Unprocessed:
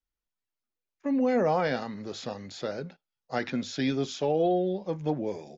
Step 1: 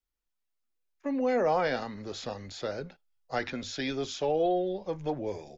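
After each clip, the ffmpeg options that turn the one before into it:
ffmpeg -i in.wav -filter_complex "[0:a]asubboost=boost=11:cutoff=57,acrossover=split=280[link_01][link_02];[link_01]alimiter=level_in=12.5dB:limit=-24dB:level=0:latency=1,volume=-12.5dB[link_03];[link_03][link_02]amix=inputs=2:normalize=0" out.wav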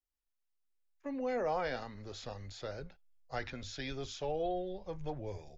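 ffmpeg -i in.wav -af "asubboost=boost=7.5:cutoff=90,volume=-7dB" out.wav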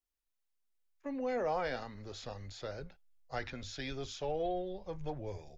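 ffmpeg -i in.wav -af "aeval=exprs='0.0668*(cos(1*acos(clip(val(0)/0.0668,-1,1)))-cos(1*PI/2))+0.000531*(cos(8*acos(clip(val(0)/0.0668,-1,1)))-cos(8*PI/2))':channel_layout=same" out.wav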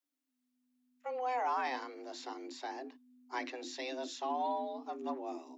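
ffmpeg -i in.wav -af "afreqshift=250" out.wav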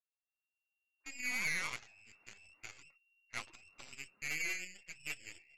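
ffmpeg -i in.wav -af "lowpass=frequency=2600:width_type=q:width=0.5098,lowpass=frequency=2600:width_type=q:width=0.6013,lowpass=frequency=2600:width_type=q:width=0.9,lowpass=frequency=2600:width_type=q:width=2.563,afreqshift=-3000,aeval=exprs='0.0631*(cos(1*acos(clip(val(0)/0.0631,-1,1)))-cos(1*PI/2))+0.0282*(cos(2*acos(clip(val(0)/0.0631,-1,1)))-cos(2*PI/2))+0.00316*(cos(4*acos(clip(val(0)/0.0631,-1,1)))-cos(4*PI/2))+0.00126*(cos(6*acos(clip(val(0)/0.0631,-1,1)))-cos(6*PI/2))+0.0126*(cos(7*acos(clip(val(0)/0.0631,-1,1)))-cos(7*PI/2))':channel_layout=same,flanger=delay=2.3:depth=3.2:regen=74:speed=1.1:shape=triangular" out.wav

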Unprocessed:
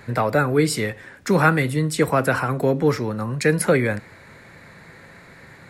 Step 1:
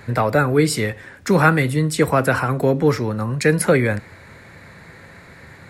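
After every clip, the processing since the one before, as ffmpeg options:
ffmpeg -i in.wav -af "equalizer=frequency=81:width=2.2:gain=7,volume=2dB" out.wav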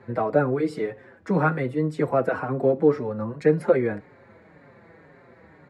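ffmpeg -i in.wav -filter_complex "[0:a]bandpass=frequency=430:width_type=q:width=0.72:csg=0,asplit=2[link_01][link_02];[link_02]adelay=5.3,afreqshift=-1.9[link_03];[link_01][link_03]amix=inputs=2:normalize=1" out.wav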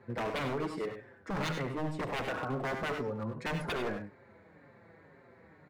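ffmpeg -i in.wav -filter_complex "[0:a]aeval=exprs='0.0841*(abs(mod(val(0)/0.0841+3,4)-2)-1)':channel_layout=same,asplit=2[link_01][link_02];[link_02]aecho=0:1:72|92|102:0.299|0.282|0.266[link_03];[link_01][link_03]amix=inputs=2:normalize=0,volume=-7.5dB" out.wav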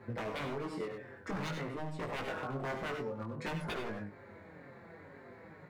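ffmpeg -i in.wav -af "acompressor=threshold=-42dB:ratio=5,flanger=delay=18:depth=4.9:speed=0.52,volume=8dB" out.wav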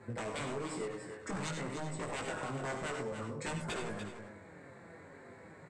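ffmpeg -i in.wav -af "lowpass=frequency=8000:width_type=q:width=11,aecho=1:1:293:0.376,volume=-1dB" out.wav

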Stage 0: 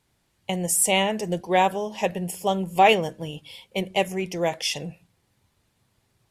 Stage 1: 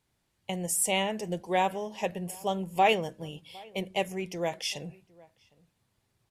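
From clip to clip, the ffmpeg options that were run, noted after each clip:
ffmpeg -i in.wav -filter_complex "[0:a]asplit=2[link_01][link_02];[link_02]adelay=758,volume=-24dB,highshelf=frequency=4000:gain=-17.1[link_03];[link_01][link_03]amix=inputs=2:normalize=0,volume=-6.5dB" out.wav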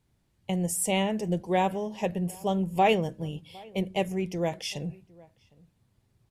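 ffmpeg -i in.wav -af "lowshelf=frequency=370:gain=11.5,volume=-2dB" out.wav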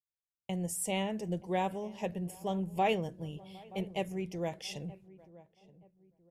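ffmpeg -i in.wav -filter_complex "[0:a]agate=range=-35dB:threshold=-51dB:ratio=16:detection=peak,asplit=2[link_01][link_02];[link_02]adelay=926,lowpass=frequency=1100:poles=1,volume=-19dB,asplit=2[link_03][link_04];[link_04]adelay=926,lowpass=frequency=1100:poles=1,volume=0.36,asplit=2[link_05][link_06];[link_06]adelay=926,lowpass=frequency=1100:poles=1,volume=0.36[link_07];[link_01][link_03][link_05][link_07]amix=inputs=4:normalize=0,volume=-7dB" out.wav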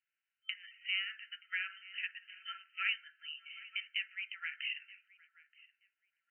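ffmpeg -i in.wav -af "afftfilt=real='re*between(b*sr/4096,1300,3100)':imag='im*between(b*sr/4096,1300,3100)':win_size=4096:overlap=0.75,acompressor=threshold=-52dB:ratio=2,volume=14dB" out.wav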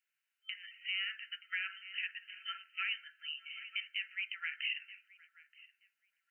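ffmpeg -i in.wav -af "highpass=frequency=1300:poles=1,alimiter=level_in=6dB:limit=-24dB:level=0:latency=1:release=46,volume=-6dB,volume=4dB" out.wav

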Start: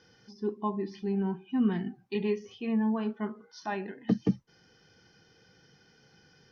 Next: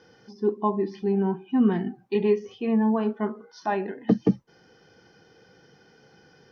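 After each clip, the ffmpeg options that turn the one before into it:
ffmpeg -i in.wav -af "equalizer=frequency=550:width=0.41:gain=9.5" out.wav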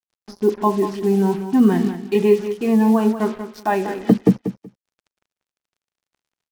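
ffmpeg -i in.wav -af "acrusher=bits=6:mix=0:aa=0.5,aecho=1:1:188|376:0.299|0.0508,volume=6.5dB" out.wav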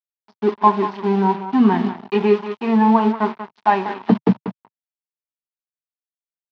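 ffmpeg -i in.wav -af "aeval=exprs='sgn(val(0))*max(abs(val(0))-0.0266,0)':channel_layout=same,highpass=frequency=130:width=0.5412,highpass=frequency=130:width=1.3066,equalizer=frequency=150:width_type=q:width=4:gain=-9,equalizer=frequency=310:width_type=q:width=4:gain=-8,equalizer=frequency=520:width_type=q:width=4:gain=-9,equalizer=frequency=940:width_type=q:width=4:gain=10,lowpass=frequency=4100:width=0.5412,lowpass=frequency=4100:width=1.3066,volume=3dB" out.wav

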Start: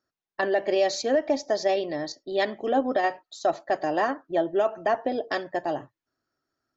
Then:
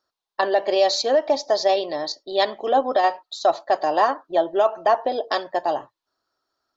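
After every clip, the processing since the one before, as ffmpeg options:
ffmpeg -i in.wav -af "equalizer=frequency=125:width_type=o:width=1:gain=-7,equalizer=frequency=250:width_type=o:width=1:gain=-4,equalizer=frequency=500:width_type=o:width=1:gain=3,equalizer=frequency=1000:width_type=o:width=1:gain=10,equalizer=frequency=2000:width_type=o:width=1:gain=-4,equalizer=frequency=4000:width_type=o:width=1:gain=11" out.wav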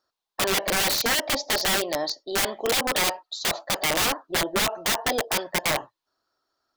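ffmpeg -i in.wav -af "aeval=exprs='(mod(7.5*val(0)+1,2)-1)/7.5':channel_layout=same" out.wav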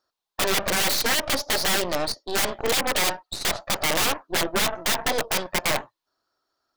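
ffmpeg -i in.wav -af "aeval=exprs='0.133*(cos(1*acos(clip(val(0)/0.133,-1,1)))-cos(1*PI/2))+0.0299*(cos(6*acos(clip(val(0)/0.133,-1,1)))-cos(6*PI/2))':channel_layout=same" out.wav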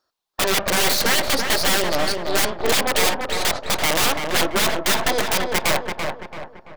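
ffmpeg -i in.wav -filter_complex "[0:a]asplit=2[link_01][link_02];[link_02]adelay=336,lowpass=frequency=2400:poles=1,volume=-4dB,asplit=2[link_03][link_04];[link_04]adelay=336,lowpass=frequency=2400:poles=1,volume=0.45,asplit=2[link_05][link_06];[link_06]adelay=336,lowpass=frequency=2400:poles=1,volume=0.45,asplit=2[link_07][link_08];[link_08]adelay=336,lowpass=frequency=2400:poles=1,volume=0.45,asplit=2[link_09][link_10];[link_10]adelay=336,lowpass=frequency=2400:poles=1,volume=0.45,asplit=2[link_11][link_12];[link_12]adelay=336,lowpass=frequency=2400:poles=1,volume=0.45[link_13];[link_01][link_03][link_05][link_07][link_09][link_11][link_13]amix=inputs=7:normalize=0,volume=3dB" out.wav

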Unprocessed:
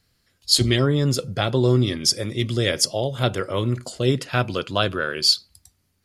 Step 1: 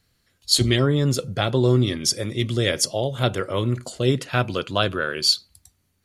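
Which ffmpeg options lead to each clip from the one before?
ffmpeg -i in.wav -af "bandreject=frequency=5000:width=9.6" out.wav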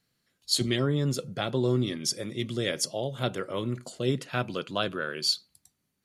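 ffmpeg -i in.wav -af "lowshelf=frequency=110:width_type=q:width=1.5:gain=-10.5,volume=-7.5dB" out.wav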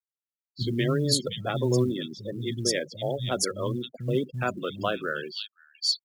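ffmpeg -i in.wav -filter_complex "[0:a]afftfilt=real='re*gte(hypot(re,im),0.0282)':imag='im*gte(hypot(re,im),0.0282)':win_size=1024:overlap=0.75,acrossover=split=200|3100[link_01][link_02][link_03];[link_02]adelay=80[link_04];[link_03]adelay=600[link_05];[link_01][link_04][link_05]amix=inputs=3:normalize=0,acrusher=bits=9:mode=log:mix=0:aa=0.000001,volume=2.5dB" out.wav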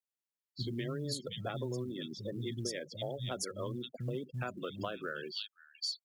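ffmpeg -i in.wav -af "acompressor=threshold=-32dB:ratio=6,volume=-3dB" out.wav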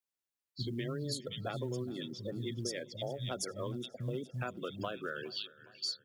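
ffmpeg -i in.wav -af "aecho=1:1:413|826|1239|1652:0.0891|0.0508|0.029|0.0165" out.wav

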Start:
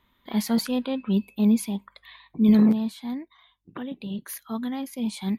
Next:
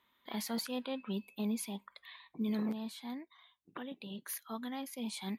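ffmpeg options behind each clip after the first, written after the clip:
ffmpeg -i in.wav -af "highpass=frequency=510:poles=1,alimiter=limit=-23.5dB:level=0:latency=1:release=240,volume=-4.5dB" out.wav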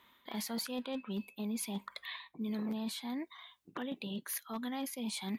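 ffmpeg -i in.wav -af "areverse,acompressor=threshold=-46dB:ratio=5,areverse,asoftclip=type=hard:threshold=-40dB,volume=9.5dB" out.wav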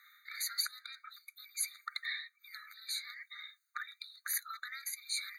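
ffmpeg -i in.wav -af "afftfilt=real='re*eq(mod(floor(b*sr/1024/1200),2),1)':imag='im*eq(mod(floor(b*sr/1024/1200),2),1)':win_size=1024:overlap=0.75,volume=7dB" out.wav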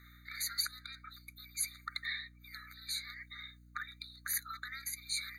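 ffmpeg -i in.wav -af "aeval=exprs='val(0)+0.00126*(sin(2*PI*60*n/s)+sin(2*PI*2*60*n/s)/2+sin(2*PI*3*60*n/s)/3+sin(2*PI*4*60*n/s)/4+sin(2*PI*5*60*n/s)/5)':channel_layout=same" out.wav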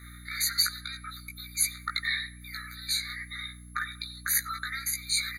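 ffmpeg -i in.wav -filter_complex "[0:a]aeval=exprs='val(0)+0.000447*sin(2*PI*11000*n/s)':channel_layout=same,asplit=2[link_01][link_02];[link_02]adelay=17,volume=-3.5dB[link_03];[link_01][link_03]amix=inputs=2:normalize=0,asplit=2[link_04][link_05];[link_05]adelay=94,lowpass=frequency=2300:poles=1,volume=-17dB,asplit=2[link_06][link_07];[link_07]adelay=94,lowpass=frequency=2300:poles=1,volume=0.42,asplit=2[link_08][link_09];[link_09]adelay=94,lowpass=frequency=2300:poles=1,volume=0.42,asplit=2[link_10][link_11];[link_11]adelay=94,lowpass=frequency=2300:poles=1,volume=0.42[link_12];[link_04][link_06][link_08][link_10][link_12]amix=inputs=5:normalize=0,volume=8dB" out.wav

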